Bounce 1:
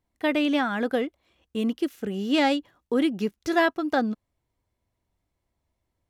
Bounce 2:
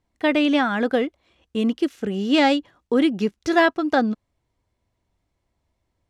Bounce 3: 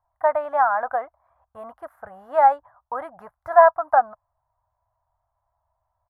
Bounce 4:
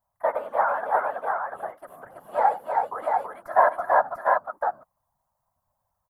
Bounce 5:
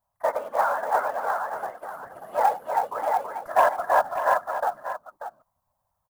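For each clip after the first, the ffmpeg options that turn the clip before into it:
ffmpeg -i in.wav -af "lowpass=8300,volume=4.5dB" out.wav
ffmpeg -i in.wav -af "firequalizer=gain_entry='entry(110,0);entry(200,-25);entry(390,-25);entry(630,11);entry(1000,14);entry(1700,0);entry(2700,-29);entry(6200,-30);entry(11000,-4)':delay=0.05:min_phase=1,volume=-5dB" out.wav
ffmpeg -i in.wav -af "crystalizer=i=3:c=0,aecho=1:1:85|329|692:0.119|0.668|0.668,afftfilt=real='hypot(re,im)*cos(2*PI*random(0))':imag='hypot(re,im)*sin(2*PI*random(1))':win_size=512:overlap=0.75" out.wav
ffmpeg -i in.wav -filter_complex "[0:a]asplit=2[link_01][link_02];[link_02]aeval=exprs='0.596*sin(PI/2*1.41*val(0)/0.596)':channel_layout=same,volume=-6dB[link_03];[link_01][link_03]amix=inputs=2:normalize=0,acrusher=bits=6:mode=log:mix=0:aa=0.000001,aecho=1:1:588:0.299,volume=-6.5dB" out.wav

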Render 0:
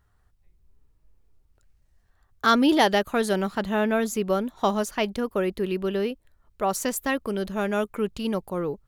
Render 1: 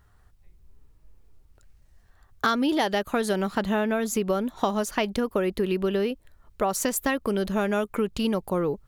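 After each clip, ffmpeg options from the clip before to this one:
ffmpeg -i in.wav -af "acompressor=threshold=-28dB:ratio=6,volume=6.5dB" out.wav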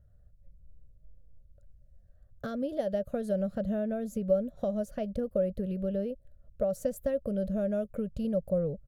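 ffmpeg -i in.wav -af "firequalizer=gain_entry='entry(160,0);entry(360,-19);entry(560,4);entry(890,-30);entry(1500,-18);entry(2100,-25);entry(3000,-23);entry(11000,-18)':delay=0.05:min_phase=1" out.wav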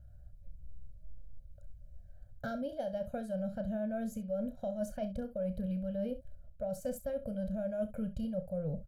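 ffmpeg -i in.wav -af "aecho=1:1:1.3:0.96,areverse,acompressor=threshold=-34dB:ratio=6,areverse,aecho=1:1:32|66:0.299|0.188" out.wav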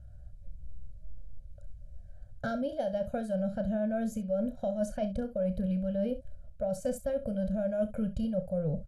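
ffmpeg -i in.wav -af "lowpass=frequency=11000:width=0.5412,lowpass=frequency=11000:width=1.3066,volume=5dB" out.wav

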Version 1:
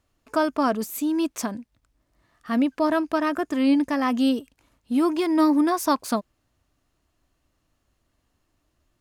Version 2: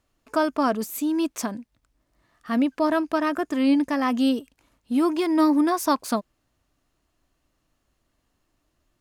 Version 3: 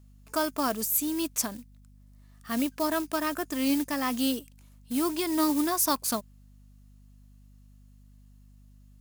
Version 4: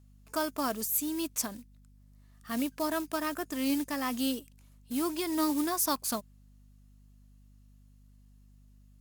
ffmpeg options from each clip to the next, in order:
ffmpeg -i in.wav -af "equalizer=frequency=82:width=1.6:gain=-4.5" out.wav
ffmpeg -i in.wav -af "acrusher=bits=6:mode=log:mix=0:aa=0.000001,crystalizer=i=3.5:c=0,aeval=exprs='val(0)+0.00501*(sin(2*PI*50*n/s)+sin(2*PI*2*50*n/s)/2+sin(2*PI*3*50*n/s)/3+sin(2*PI*4*50*n/s)/4+sin(2*PI*5*50*n/s)/5)':channel_layout=same,volume=-7dB" out.wav
ffmpeg -i in.wav -af "volume=-3.5dB" -ar 48000 -c:a libopus -b:a 64k out.opus

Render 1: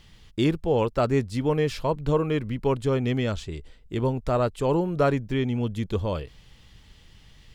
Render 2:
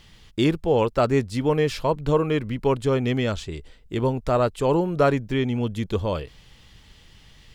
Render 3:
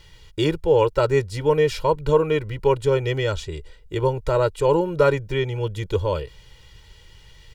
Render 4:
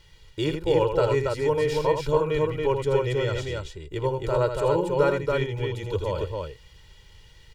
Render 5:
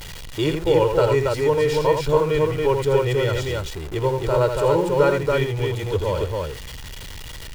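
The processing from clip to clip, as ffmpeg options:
ffmpeg -i in.wav -af "lowshelf=frequency=230:gain=-3.5,volume=3.5dB" out.wav
ffmpeg -i in.wav -af "aecho=1:1:2.1:0.95,volume=-1.5dB" out.wav
ffmpeg -i in.wav -af "aecho=1:1:81.63|279.9:0.447|0.708,volume=-5.5dB" out.wav
ffmpeg -i in.wav -af "aeval=exprs='val(0)+0.5*0.0188*sgn(val(0))':channel_layout=same,volume=3.5dB" out.wav

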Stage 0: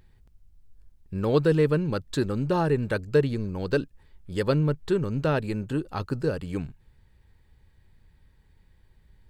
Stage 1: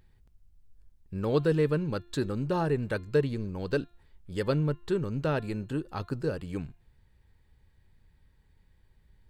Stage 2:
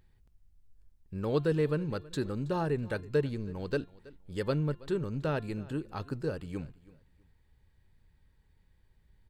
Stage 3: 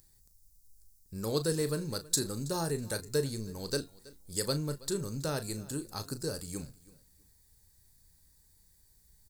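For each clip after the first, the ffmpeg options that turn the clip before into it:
ffmpeg -i in.wav -af "bandreject=frequency=348.4:width_type=h:width=4,bandreject=frequency=696.8:width_type=h:width=4,bandreject=frequency=1045.2:width_type=h:width=4,bandreject=frequency=1393.6:width_type=h:width=4,bandreject=frequency=1742:width_type=h:width=4,bandreject=frequency=2090.4:width_type=h:width=4,bandreject=frequency=2438.8:width_type=h:width=4,bandreject=frequency=2787.2:width_type=h:width=4,bandreject=frequency=3135.6:width_type=h:width=4,bandreject=frequency=3484:width_type=h:width=4,bandreject=frequency=3832.4:width_type=h:width=4,bandreject=frequency=4180.8:width_type=h:width=4,volume=-4dB" out.wav
ffmpeg -i in.wav -af "aecho=1:1:325|650:0.0891|0.0223,volume=-3dB" out.wav
ffmpeg -i in.wav -filter_complex "[0:a]aexciter=amount=14.2:drive=5.6:freq=4500,asplit=2[link_01][link_02];[link_02]adelay=36,volume=-11dB[link_03];[link_01][link_03]amix=inputs=2:normalize=0,volume=-3dB" out.wav

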